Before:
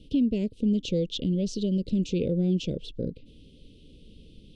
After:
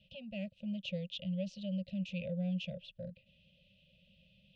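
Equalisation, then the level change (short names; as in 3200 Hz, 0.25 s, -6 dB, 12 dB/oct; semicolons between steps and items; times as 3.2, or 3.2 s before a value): vowel filter e; elliptic band-stop 190–680 Hz, stop band 40 dB; high shelf 2500 Hz -9.5 dB; +15.0 dB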